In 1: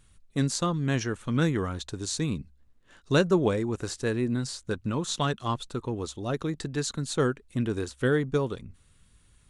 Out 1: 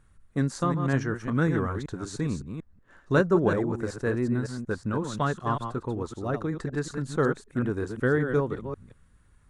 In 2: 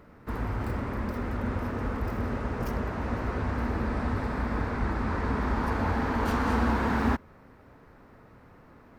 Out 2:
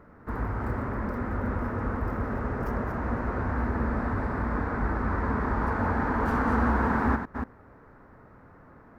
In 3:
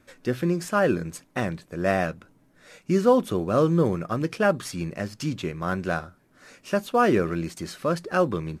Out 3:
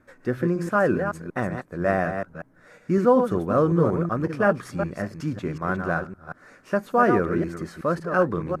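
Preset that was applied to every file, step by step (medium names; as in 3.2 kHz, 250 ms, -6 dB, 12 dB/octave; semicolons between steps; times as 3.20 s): chunks repeated in reverse 186 ms, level -7 dB; resonant high shelf 2.2 kHz -9 dB, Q 1.5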